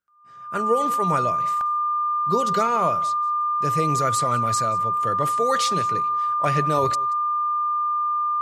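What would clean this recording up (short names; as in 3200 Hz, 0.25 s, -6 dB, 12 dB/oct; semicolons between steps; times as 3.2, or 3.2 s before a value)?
notch 1200 Hz, Q 30; interpolate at 1.61, 1.2 ms; inverse comb 0.181 s -21.5 dB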